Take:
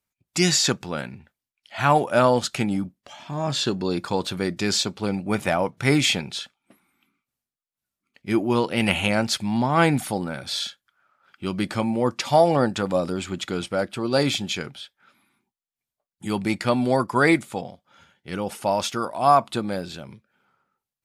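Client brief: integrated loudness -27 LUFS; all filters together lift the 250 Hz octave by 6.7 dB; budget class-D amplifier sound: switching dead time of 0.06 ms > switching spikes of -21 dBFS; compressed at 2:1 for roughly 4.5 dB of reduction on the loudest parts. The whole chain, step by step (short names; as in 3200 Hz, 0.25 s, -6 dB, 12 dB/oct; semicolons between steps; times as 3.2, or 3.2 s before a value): bell 250 Hz +8.5 dB; compressor 2:1, threshold -18 dBFS; switching dead time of 0.06 ms; switching spikes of -21 dBFS; gain -3.5 dB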